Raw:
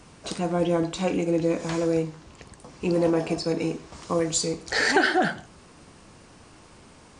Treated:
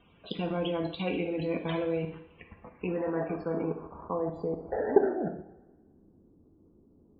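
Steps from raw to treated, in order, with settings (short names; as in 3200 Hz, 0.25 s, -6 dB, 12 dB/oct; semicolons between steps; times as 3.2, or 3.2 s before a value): low-pass sweep 3300 Hz -> 330 Hz, 2.06–5.78; level quantiser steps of 15 dB; loudest bins only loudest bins 64; two-slope reverb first 0.62 s, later 1.6 s, from -17 dB, DRR 4.5 dB; gain -1.5 dB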